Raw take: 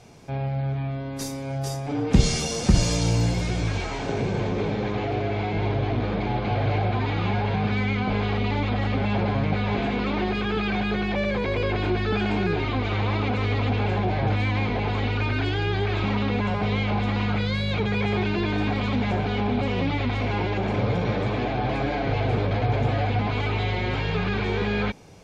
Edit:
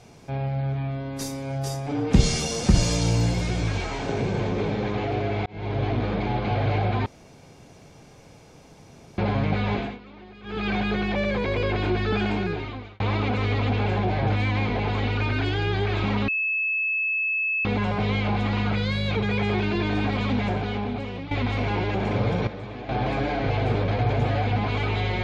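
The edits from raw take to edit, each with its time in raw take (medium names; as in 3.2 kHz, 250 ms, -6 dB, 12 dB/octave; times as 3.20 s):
5.46–5.82 s: fade in
7.06–9.18 s: room tone
9.72–10.69 s: dip -20 dB, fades 0.27 s
12.24–13.00 s: fade out
16.28 s: add tone 2.6 kHz -22 dBFS 1.37 s
19.01–19.94 s: fade out, to -12.5 dB
21.10–21.52 s: gain -10.5 dB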